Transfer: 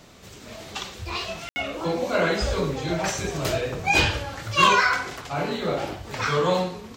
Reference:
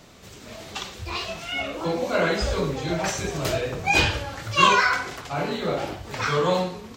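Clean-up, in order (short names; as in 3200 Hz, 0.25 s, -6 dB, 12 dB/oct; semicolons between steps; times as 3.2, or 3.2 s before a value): clip repair -9 dBFS; de-click; room tone fill 1.49–1.56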